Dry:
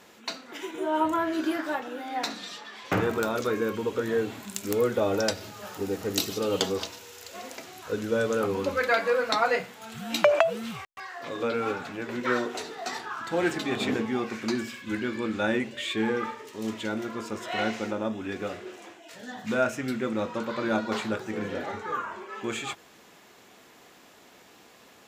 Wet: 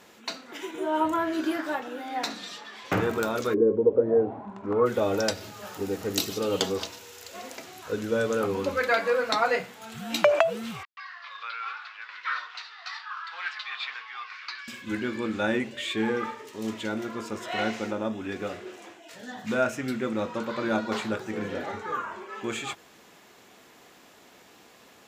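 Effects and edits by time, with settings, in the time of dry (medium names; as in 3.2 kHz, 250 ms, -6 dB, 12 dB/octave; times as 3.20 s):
3.53–4.85 s: resonant low-pass 380 Hz -> 1.2 kHz, resonance Q 3.2
10.83–14.68 s: Chebyshev band-pass 1.1–4.8 kHz, order 3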